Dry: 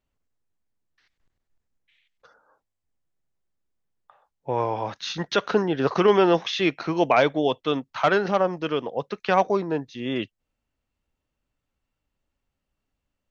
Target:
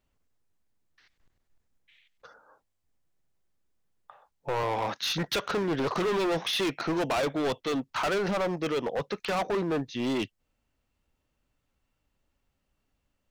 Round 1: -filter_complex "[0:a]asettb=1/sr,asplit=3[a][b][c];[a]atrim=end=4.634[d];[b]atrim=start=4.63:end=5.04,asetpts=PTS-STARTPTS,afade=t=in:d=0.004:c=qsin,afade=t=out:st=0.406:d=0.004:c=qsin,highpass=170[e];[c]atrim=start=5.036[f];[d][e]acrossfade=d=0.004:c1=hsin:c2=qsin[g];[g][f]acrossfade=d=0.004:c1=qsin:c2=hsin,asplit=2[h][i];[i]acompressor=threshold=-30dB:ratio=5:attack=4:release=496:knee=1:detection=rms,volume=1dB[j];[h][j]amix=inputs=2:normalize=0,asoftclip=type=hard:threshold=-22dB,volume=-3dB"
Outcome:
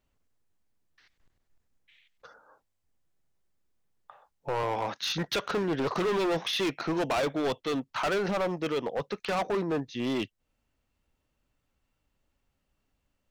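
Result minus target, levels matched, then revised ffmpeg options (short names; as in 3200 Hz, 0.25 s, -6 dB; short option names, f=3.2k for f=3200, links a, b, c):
compressor: peak gain reduction +7 dB
-filter_complex "[0:a]asettb=1/sr,asplit=3[a][b][c];[a]atrim=end=4.634[d];[b]atrim=start=4.63:end=5.04,asetpts=PTS-STARTPTS,afade=t=in:d=0.004:c=qsin,afade=t=out:st=0.406:d=0.004:c=qsin,highpass=170[e];[c]atrim=start=5.036[f];[d][e]acrossfade=d=0.004:c1=hsin:c2=qsin[g];[g][f]acrossfade=d=0.004:c1=qsin:c2=hsin,asplit=2[h][i];[i]acompressor=threshold=-21dB:ratio=5:attack=4:release=496:knee=1:detection=rms,volume=1dB[j];[h][j]amix=inputs=2:normalize=0,asoftclip=type=hard:threshold=-22dB,volume=-3dB"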